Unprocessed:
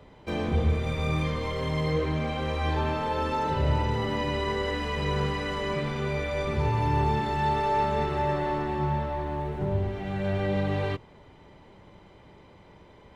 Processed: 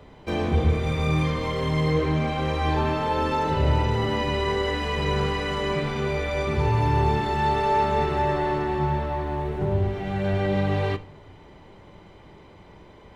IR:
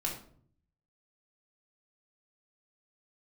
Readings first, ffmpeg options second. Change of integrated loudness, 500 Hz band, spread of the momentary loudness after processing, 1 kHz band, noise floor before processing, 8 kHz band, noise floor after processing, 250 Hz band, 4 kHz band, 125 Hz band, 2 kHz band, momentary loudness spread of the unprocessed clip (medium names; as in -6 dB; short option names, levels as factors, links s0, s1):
+3.5 dB, +4.0 dB, 5 LU, +3.5 dB, -53 dBFS, no reading, -49 dBFS, +3.5 dB, +4.0 dB, +3.5 dB, +3.5 dB, 5 LU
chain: -filter_complex "[0:a]asplit=2[s0][s1];[1:a]atrim=start_sample=2205[s2];[s1][s2]afir=irnorm=-1:irlink=0,volume=0.237[s3];[s0][s3]amix=inputs=2:normalize=0,volume=1.26"